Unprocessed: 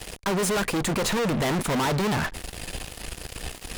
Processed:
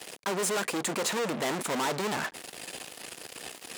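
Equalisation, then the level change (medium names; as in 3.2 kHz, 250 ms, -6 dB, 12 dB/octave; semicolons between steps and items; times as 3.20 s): high-pass 270 Hz 12 dB/octave; dynamic bell 7.6 kHz, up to +4 dB, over -44 dBFS, Q 2.3; -4.0 dB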